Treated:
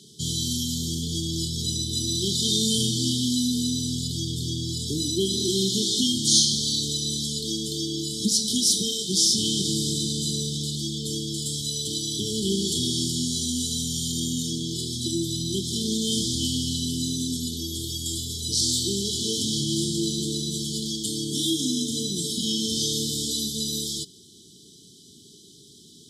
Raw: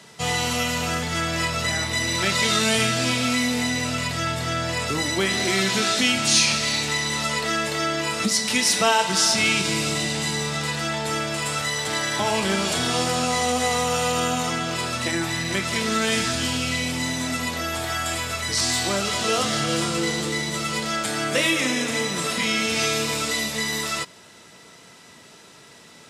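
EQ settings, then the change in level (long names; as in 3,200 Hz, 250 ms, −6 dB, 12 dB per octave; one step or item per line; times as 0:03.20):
linear-phase brick-wall band-stop 440–3,000 Hz
0.0 dB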